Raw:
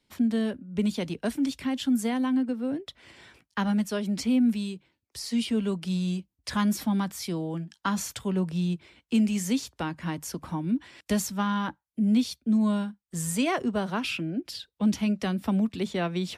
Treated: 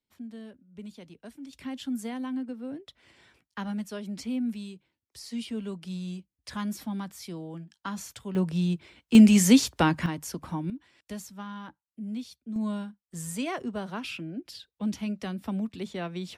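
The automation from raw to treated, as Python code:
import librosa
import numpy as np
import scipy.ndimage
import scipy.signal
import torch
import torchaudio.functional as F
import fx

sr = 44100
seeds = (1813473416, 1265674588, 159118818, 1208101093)

y = fx.gain(x, sr, db=fx.steps((0.0, -16.5), (1.53, -7.5), (8.35, 1.0), (9.15, 9.0), (10.06, -1.0), (10.7, -12.5), (12.56, -6.0)))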